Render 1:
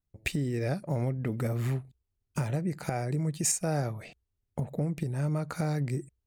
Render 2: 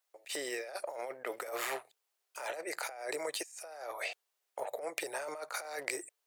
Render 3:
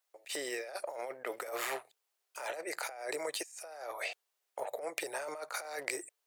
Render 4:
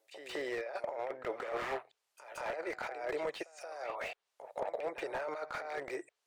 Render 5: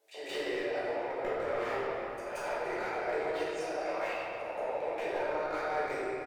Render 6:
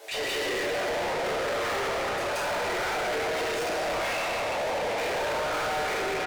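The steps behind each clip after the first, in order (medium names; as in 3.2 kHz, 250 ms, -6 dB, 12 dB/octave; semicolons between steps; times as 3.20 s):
inverse Chebyshev high-pass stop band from 210 Hz, stop band 50 dB; compressor with a negative ratio -46 dBFS, ratio -1; trim +5 dB
no audible change
low-pass that closes with the level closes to 2.7 kHz, closed at -38 dBFS; reverse echo 178 ms -13.5 dB; slew-rate limiter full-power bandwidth 19 Hz; trim +2 dB
compression 4:1, threshold -42 dBFS, peak gain reduction 9.5 dB; feedback delay 291 ms, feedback 56%, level -16.5 dB; simulated room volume 160 m³, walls hard, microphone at 1.4 m
overdrive pedal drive 38 dB, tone 5.5 kHz, clips at -20.5 dBFS; trim -2.5 dB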